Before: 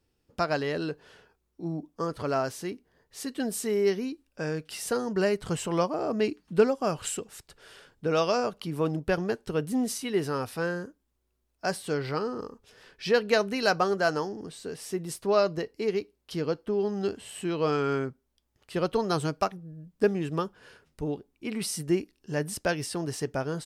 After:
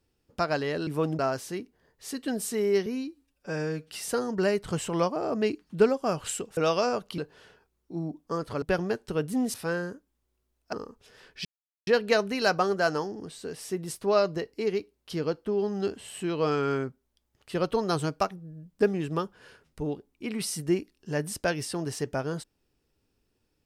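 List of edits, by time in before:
0:00.87–0:02.31: swap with 0:08.69–0:09.01
0:03.98–0:04.66: time-stretch 1.5×
0:07.35–0:08.08: remove
0:09.93–0:10.47: remove
0:11.66–0:12.36: remove
0:13.08: splice in silence 0.42 s

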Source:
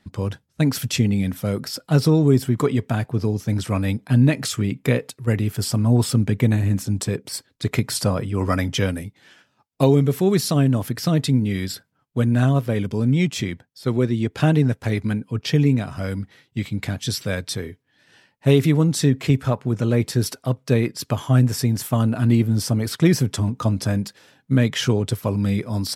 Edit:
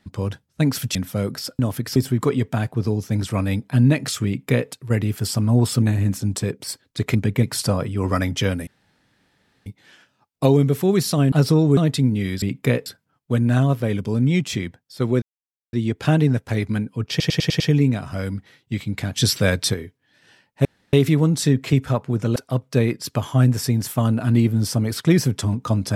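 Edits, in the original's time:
0:00.95–0:01.24: remove
0:01.88–0:02.33: swap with 0:10.70–0:11.07
0:04.63–0:05.07: duplicate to 0:11.72
0:06.19–0:06.47: move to 0:07.80
0:09.04: splice in room tone 0.99 s
0:14.08: splice in silence 0.51 s
0:15.45: stutter 0.10 s, 6 plays
0:17.01–0:17.59: clip gain +6.5 dB
0:18.50: splice in room tone 0.28 s
0:19.93–0:20.31: remove

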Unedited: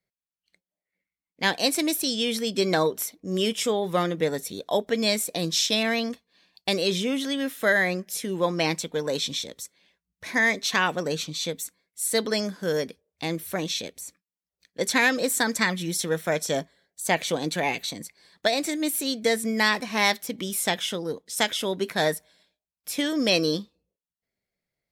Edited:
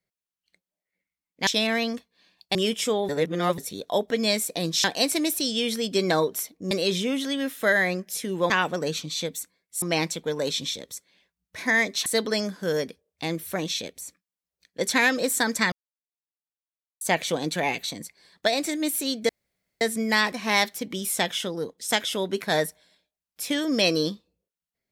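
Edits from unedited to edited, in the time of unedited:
0:01.47–0:03.34: swap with 0:05.63–0:06.71
0:03.88–0:04.37: reverse
0:10.74–0:12.06: move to 0:08.50
0:15.72–0:17.01: silence
0:19.29: splice in room tone 0.52 s

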